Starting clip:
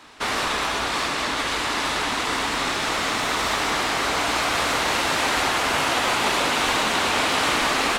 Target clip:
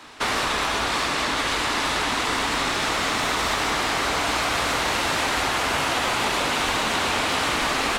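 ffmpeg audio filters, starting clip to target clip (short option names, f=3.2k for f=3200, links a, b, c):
-filter_complex "[0:a]acrossover=split=140[a][b];[b]acompressor=threshold=-23dB:ratio=6[c];[a][c]amix=inputs=2:normalize=0,volume=3dB"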